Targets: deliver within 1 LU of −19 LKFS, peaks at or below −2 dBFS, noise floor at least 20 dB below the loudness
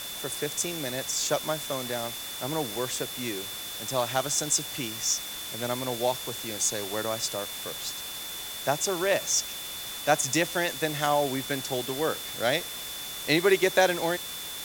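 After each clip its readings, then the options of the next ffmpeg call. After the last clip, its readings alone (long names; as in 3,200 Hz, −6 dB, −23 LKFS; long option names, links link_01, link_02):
interfering tone 3,500 Hz; level of the tone −39 dBFS; background noise floor −37 dBFS; target noise floor −48 dBFS; integrated loudness −28.0 LKFS; sample peak −6.0 dBFS; target loudness −19.0 LKFS
→ -af "bandreject=frequency=3500:width=30"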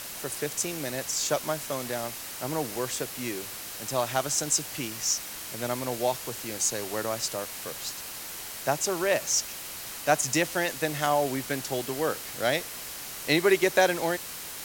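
interfering tone none found; background noise floor −39 dBFS; target noise floor −49 dBFS
→ -af "afftdn=noise_reduction=10:noise_floor=-39"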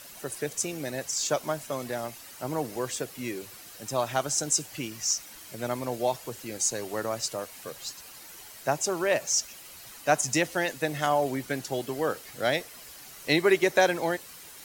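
background noise floor −47 dBFS; target noise floor −49 dBFS
→ -af "afftdn=noise_reduction=6:noise_floor=-47"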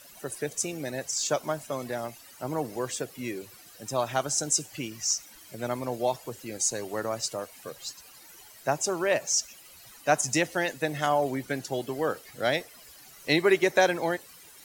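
background noise floor −51 dBFS; integrated loudness −28.5 LKFS; sample peak −7.0 dBFS; target loudness −19.0 LKFS
→ -af "volume=9.5dB,alimiter=limit=-2dB:level=0:latency=1"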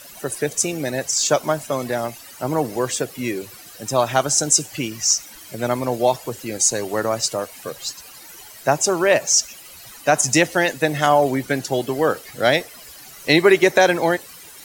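integrated loudness −19.5 LKFS; sample peak −2.0 dBFS; background noise floor −42 dBFS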